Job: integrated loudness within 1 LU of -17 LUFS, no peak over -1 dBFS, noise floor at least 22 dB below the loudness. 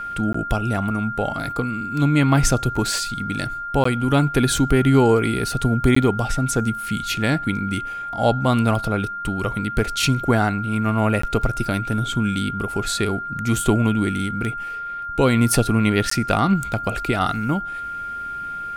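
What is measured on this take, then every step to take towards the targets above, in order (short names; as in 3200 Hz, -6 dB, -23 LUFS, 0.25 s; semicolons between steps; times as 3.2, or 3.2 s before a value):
dropouts 5; longest dropout 14 ms; steady tone 1400 Hz; tone level -27 dBFS; loudness -21.0 LUFS; peak -3.0 dBFS; loudness target -17.0 LUFS
-> interpolate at 0.33/3.84/5.95/11.22/16.1, 14 ms; notch 1400 Hz, Q 30; gain +4 dB; limiter -1 dBFS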